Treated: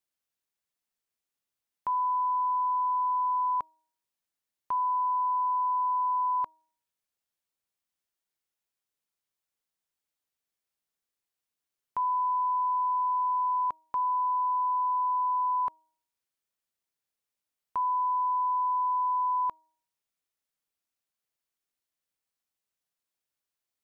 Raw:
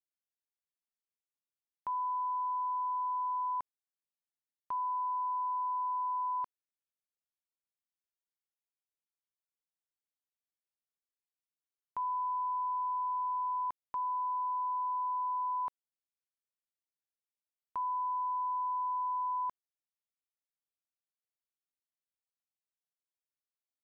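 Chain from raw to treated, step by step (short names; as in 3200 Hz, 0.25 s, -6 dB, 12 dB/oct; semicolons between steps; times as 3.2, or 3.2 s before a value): de-hum 316.9 Hz, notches 3; gain +6.5 dB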